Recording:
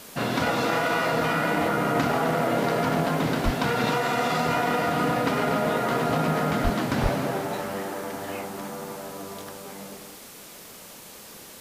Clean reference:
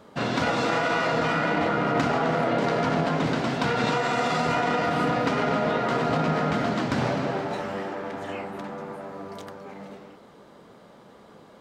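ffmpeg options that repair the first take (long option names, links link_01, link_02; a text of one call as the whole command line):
ffmpeg -i in.wav -filter_complex "[0:a]asplit=3[link_01][link_02][link_03];[link_01]afade=type=out:start_time=3.44:duration=0.02[link_04];[link_02]highpass=frequency=140:width=0.5412,highpass=frequency=140:width=1.3066,afade=type=in:start_time=3.44:duration=0.02,afade=type=out:start_time=3.56:duration=0.02[link_05];[link_03]afade=type=in:start_time=3.56:duration=0.02[link_06];[link_04][link_05][link_06]amix=inputs=3:normalize=0,asplit=3[link_07][link_08][link_09];[link_07]afade=type=out:start_time=6.63:duration=0.02[link_10];[link_08]highpass=frequency=140:width=0.5412,highpass=frequency=140:width=1.3066,afade=type=in:start_time=6.63:duration=0.02,afade=type=out:start_time=6.75:duration=0.02[link_11];[link_09]afade=type=in:start_time=6.75:duration=0.02[link_12];[link_10][link_11][link_12]amix=inputs=3:normalize=0,asplit=3[link_13][link_14][link_15];[link_13]afade=type=out:start_time=7.02:duration=0.02[link_16];[link_14]highpass=frequency=140:width=0.5412,highpass=frequency=140:width=1.3066,afade=type=in:start_time=7.02:duration=0.02,afade=type=out:start_time=7.14:duration=0.02[link_17];[link_15]afade=type=in:start_time=7.14:duration=0.02[link_18];[link_16][link_17][link_18]amix=inputs=3:normalize=0,afwtdn=0.0063" out.wav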